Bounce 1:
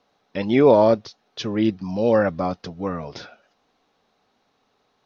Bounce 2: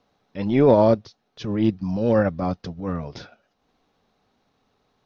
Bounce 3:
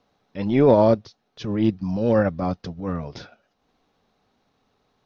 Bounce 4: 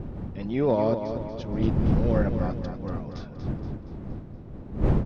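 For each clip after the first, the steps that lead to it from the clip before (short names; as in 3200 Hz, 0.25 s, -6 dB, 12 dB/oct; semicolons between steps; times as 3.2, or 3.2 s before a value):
transient shaper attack -9 dB, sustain -5 dB; low shelf 210 Hz +11 dB; gain -2 dB
nothing audible
wind noise 190 Hz -21 dBFS; on a send: feedback echo 0.236 s, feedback 52%, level -8 dB; on the sum: gain -8 dB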